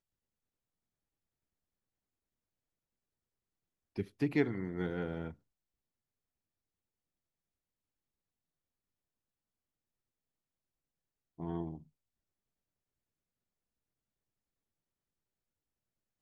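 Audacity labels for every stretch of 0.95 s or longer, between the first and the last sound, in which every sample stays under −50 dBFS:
5.330000	11.390000	silence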